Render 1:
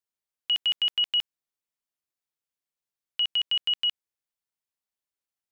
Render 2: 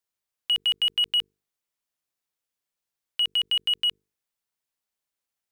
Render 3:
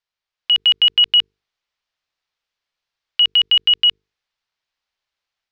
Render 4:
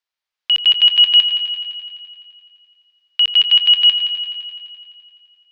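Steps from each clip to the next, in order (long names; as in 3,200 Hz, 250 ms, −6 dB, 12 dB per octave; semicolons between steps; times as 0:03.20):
mains-hum notches 50/100/150/200/250/300/350/400/450 Hz; in parallel at −4 dB: soft clipping −32 dBFS, distortion −10 dB
low-pass filter 5,000 Hz 24 dB per octave; parametric band 240 Hz −10.5 dB 2.4 octaves; automatic gain control gain up to 5 dB; level +5.5 dB
low-shelf EQ 320 Hz −9.5 dB; on a send: echo machine with several playback heads 85 ms, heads first and second, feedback 68%, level −14 dB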